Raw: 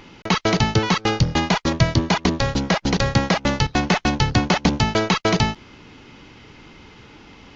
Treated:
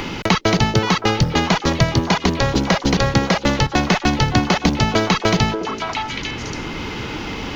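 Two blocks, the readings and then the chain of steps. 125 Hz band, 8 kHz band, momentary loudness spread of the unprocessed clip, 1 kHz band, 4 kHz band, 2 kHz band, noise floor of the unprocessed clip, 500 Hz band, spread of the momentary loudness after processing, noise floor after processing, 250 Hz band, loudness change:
+2.0 dB, no reading, 3 LU, +3.0 dB, +3.0 dB, +3.0 dB, -46 dBFS, +3.0 dB, 10 LU, -34 dBFS, +2.5 dB, +1.5 dB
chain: companded quantiser 8-bit; repeats whose band climbs or falls 283 ms, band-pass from 400 Hz, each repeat 1.4 oct, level -6.5 dB; three bands compressed up and down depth 70%; trim +2 dB

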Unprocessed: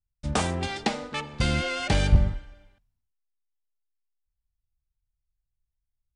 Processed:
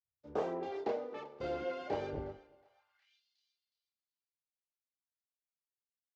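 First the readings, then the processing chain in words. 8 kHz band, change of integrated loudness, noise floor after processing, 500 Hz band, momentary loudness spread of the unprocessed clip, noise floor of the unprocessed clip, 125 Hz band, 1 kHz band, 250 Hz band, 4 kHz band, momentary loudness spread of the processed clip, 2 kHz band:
under -30 dB, -13.0 dB, under -85 dBFS, -3.5 dB, 10 LU, -83 dBFS, -25.0 dB, -10.0 dB, -14.0 dB, -23.5 dB, 7 LU, -19.0 dB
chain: band noise 59–130 Hz -62 dBFS; tone controls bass -13 dB, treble +14 dB; chorus voices 2, 0.88 Hz, delay 29 ms, depth 1.1 ms; on a send: thinning echo 364 ms, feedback 38%, high-pass 590 Hz, level -17.5 dB; on the sum: overdrive pedal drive 14 dB, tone 1.2 kHz, clips at -11 dBFS; steep low-pass 6.9 kHz; peaking EQ 74 Hz +12 dB 1.8 oct; band-pass sweep 400 Hz -> 4.2 kHz, 2.61–3.23 s; three bands expanded up and down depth 40%; trim +2 dB

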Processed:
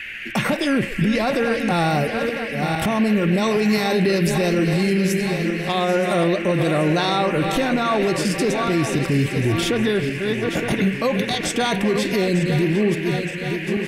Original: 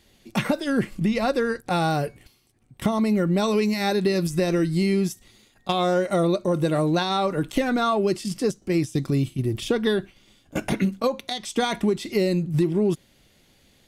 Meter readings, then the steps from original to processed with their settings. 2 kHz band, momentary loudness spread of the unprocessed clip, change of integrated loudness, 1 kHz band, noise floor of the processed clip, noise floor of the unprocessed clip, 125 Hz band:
+8.5 dB, 6 LU, +3.5 dB, +3.5 dB, -29 dBFS, -60 dBFS, +4.0 dB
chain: backward echo that repeats 459 ms, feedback 65%, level -10 dB; peak limiter -20 dBFS, peak gain reduction 10.5 dB; repeats whose band climbs or falls 132 ms, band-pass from 530 Hz, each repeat 1.4 oct, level -10 dB; band noise 1.6–2.8 kHz -41 dBFS; trim +8 dB

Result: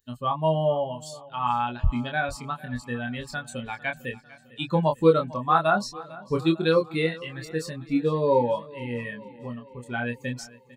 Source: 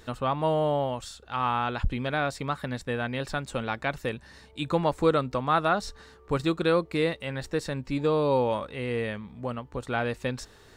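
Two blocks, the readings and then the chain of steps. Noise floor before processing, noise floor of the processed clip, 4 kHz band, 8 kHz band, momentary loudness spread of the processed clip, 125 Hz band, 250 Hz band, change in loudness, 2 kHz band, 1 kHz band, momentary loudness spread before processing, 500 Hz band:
-54 dBFS, -51 dBFS, +0.5 dB, +2.0 dB, 16 LU, +1.5 dB, +2.0 dB, +2.0 dB, +1.5 dB, +1.5 dB, 11 LU, +2.0 dB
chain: expander on every frequency bin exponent 2; doubling 25 ms -4 dB; feedback delay 450 ms, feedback 57%, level -20 dB; trim +5 dB

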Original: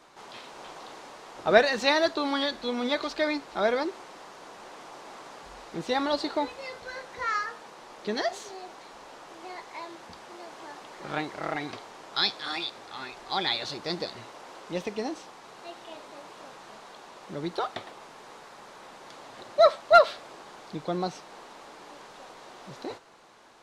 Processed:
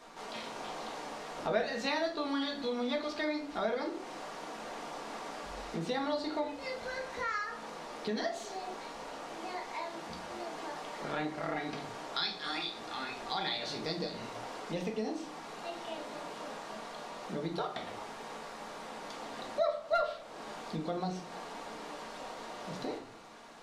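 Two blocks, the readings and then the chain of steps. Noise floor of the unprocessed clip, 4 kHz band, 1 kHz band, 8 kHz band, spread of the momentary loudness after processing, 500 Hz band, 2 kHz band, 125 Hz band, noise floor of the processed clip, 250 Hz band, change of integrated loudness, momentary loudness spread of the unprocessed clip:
-49 dBFS, -7.0 dB, -7.0 dB, -3.0 dB, 10 LU, -8.0 dB, -7.5 dB, -1.5 dB, -46 dBFS, -3.5 dB, -10.0 dB, 23 LU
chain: simulated room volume 290 m³, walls furnished, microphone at 1.7 m; compression 2.5:1, threshold -36 dBFS, peak gain reduction 18 dB

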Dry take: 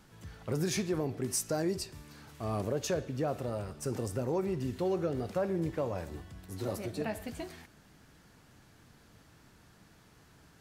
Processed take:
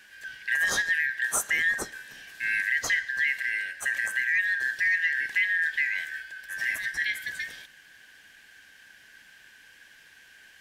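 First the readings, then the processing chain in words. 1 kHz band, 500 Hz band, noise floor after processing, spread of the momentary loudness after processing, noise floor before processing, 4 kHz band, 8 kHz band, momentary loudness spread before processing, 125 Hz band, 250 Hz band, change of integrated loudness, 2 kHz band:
-2.5 dB, under -15 dB, -55 dBFS, 13 LU, -61 dBFS, +8.0 dB, +5.5 dB, 13 LU, under -20 dB, under -15 dB, +8.5 dB, +26.0 dB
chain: four frequency bands reordered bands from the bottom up 4123; trim +6 dB

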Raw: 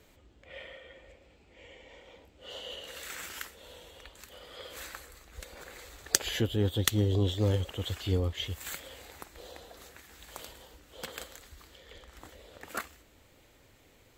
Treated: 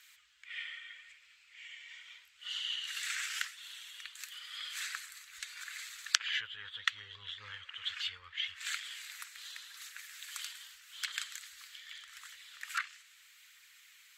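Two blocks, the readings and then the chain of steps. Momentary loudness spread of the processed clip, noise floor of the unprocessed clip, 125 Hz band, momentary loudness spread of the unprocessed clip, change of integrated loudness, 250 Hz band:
17 LU, -61 dBFS, -35.0 dB, 23 LU, -7.0 dB, under -40 dB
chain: phaser 0.81 Hz, delay 4.4 ms, feedback 26%; low-pass that closes with the level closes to 1.9 kHz, closed at -29 dBFS; inverse Chebyshev high-pass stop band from 740 Hz, stop band 40 dB; trim +6 dB

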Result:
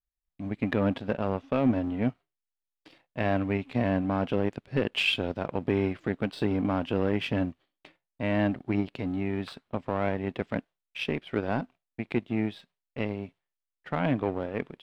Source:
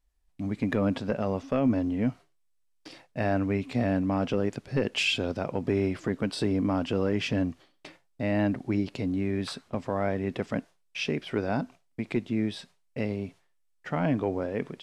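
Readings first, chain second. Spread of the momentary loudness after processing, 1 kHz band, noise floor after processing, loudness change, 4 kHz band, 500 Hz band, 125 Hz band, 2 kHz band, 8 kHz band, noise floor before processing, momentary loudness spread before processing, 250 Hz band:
9 LU, +1.0 dB, under -85 dBFS, -0.5 dB, -0.5 dB, -0.5 dB, -0.5 dB, +1.0 dB, under -10 dB, -69 dBFS, 9 LU, -1.0 dB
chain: power-law waveshaper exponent 1.4; resonant high shelf 4.4 kHz -7.5 dB, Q 1.5; trim +1.5 dB

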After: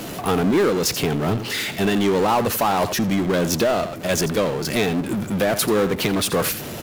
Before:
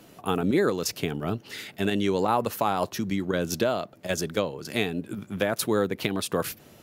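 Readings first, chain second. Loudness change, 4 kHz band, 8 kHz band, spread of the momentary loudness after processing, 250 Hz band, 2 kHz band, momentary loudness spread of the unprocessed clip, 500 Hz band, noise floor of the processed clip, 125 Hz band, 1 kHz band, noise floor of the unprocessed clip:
+7.0 dB, +8.0 dB, +9.0 dB, 5 LU, +7.0 dB, +6.5 dB, 8 LU, +6.5 dB, -32 dBFS, +7.5 dB, +6.5 dB, -53 dBFS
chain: delay 85 ms -18.5 dB; power-law waveshaper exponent 0.5

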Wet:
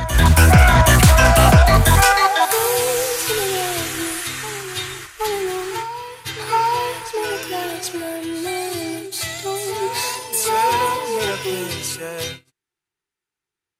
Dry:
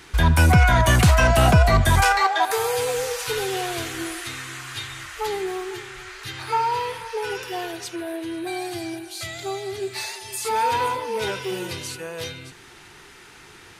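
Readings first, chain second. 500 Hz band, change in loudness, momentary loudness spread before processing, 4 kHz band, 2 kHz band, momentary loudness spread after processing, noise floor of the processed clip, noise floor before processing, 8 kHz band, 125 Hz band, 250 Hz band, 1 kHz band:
+4.5 dB, +4.5 dB, 16 LU, +5.5 dB, +4.5 dB, 15 LU, under -85 dBFS, -47 dBFS, +9.0 dB, +4.0 dB, +4.0 dB, +4.5 dB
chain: treble shelf 8.5 kHz +11.5 dB; gate -34 dBFS, range -46 dB; reverse echo 773 ms -10.5 dB; loudspeaker Doppler distortion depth 0.16 ms; trim +4 dB

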